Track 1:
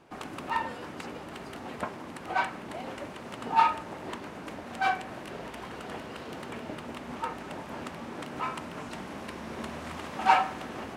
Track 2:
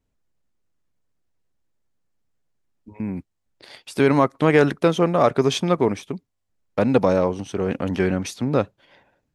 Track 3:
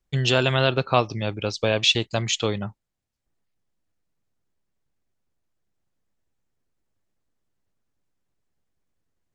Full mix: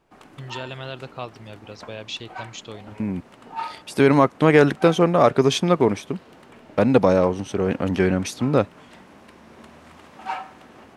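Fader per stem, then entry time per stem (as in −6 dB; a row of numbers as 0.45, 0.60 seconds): −8.0, +1.5, −13.5 decibels; 0.00, 0.00, 0.25 seconds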